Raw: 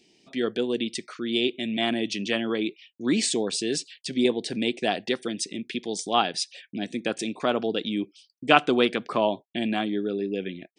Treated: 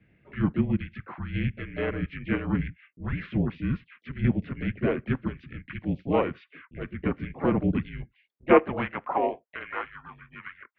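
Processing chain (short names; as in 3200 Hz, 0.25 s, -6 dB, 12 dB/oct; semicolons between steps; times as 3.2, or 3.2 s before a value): in parallel at -1 dB: compressor, threshold -33 dBFS, peak gain reduction 20 dB; on the sum: high-pass sweep 450 Hz -> 1400 Hz, 7.86–9.95; harmoniser -4 st -8 dB, +4 st -7 dB; mistuned SSB -260 Hz 320–2500 Hz; gain -6 dB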